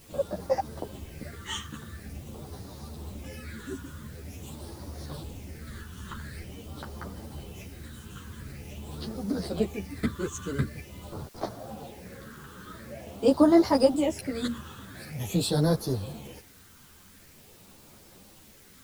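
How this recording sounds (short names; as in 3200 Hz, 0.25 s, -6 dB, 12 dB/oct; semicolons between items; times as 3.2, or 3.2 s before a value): phasing stages 8, 0.46 Hz, lowest notch 660–2600 Hz; a quantiser's noise floor 10-bit, dither triangular; a shimmering, thickened sound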